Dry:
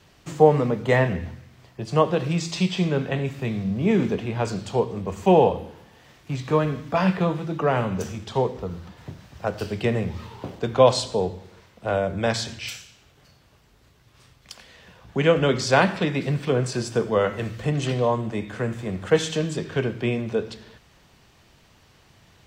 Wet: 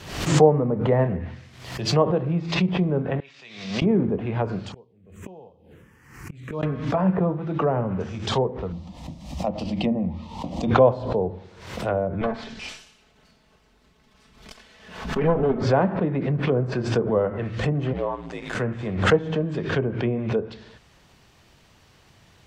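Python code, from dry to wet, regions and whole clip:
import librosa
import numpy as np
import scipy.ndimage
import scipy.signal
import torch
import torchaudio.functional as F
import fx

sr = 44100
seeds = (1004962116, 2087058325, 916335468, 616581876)

y = fx.chain(x, sr, fx.median_filter(points=5),
    fx.high_shelf(hz=2200.0, db=10.0), at=(0.99, 2.55))
y = fx.chain(y, sr, fx.lowpass(hz=5300.0, slope=24),
    fx.differentiator(),
    fx.sustainer(db_per_s=91.0), at=(3.2, 3.82))
y = fx.chain(y, sr, fx.env_phaser(low_hz=600.0, high_hz=1900.0, full_db=-16.5),
    fx.gate_flip(shuts_db=-25.0, range_db=-28),
    fx.peak_eq(hz=3700.0, db=-4.5, octaves=1.2), at=(4.72, 6.63))
y = fx.chain(y, sr, fx.low_shelf(hz=210.0, db=10.5),
    fx.fixed_phaser(hz=410.0, stages=6), at=(8.72, 10.71))
y = fx.chain(y, sr, fx.lower_of_two(delay_ms=4.6),
    fx.high_shelf(hz=8100.0, db=-10.5), at=(12.21, 15.62))
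y = fx.chain(y, sr, fx.law_mismatch(coded='A'),
    fx.ring_mod(carrier_hz=56.0),
    fx.low_shelf(hz=320.0, db=-9.5), at=(17.93, 18.55))
y = fx.env_lowpass_down(y, sr, base_hz=850.0, full_db=-19.5)
y = fx.pre_swell(y, sr, db_per_s=76.0)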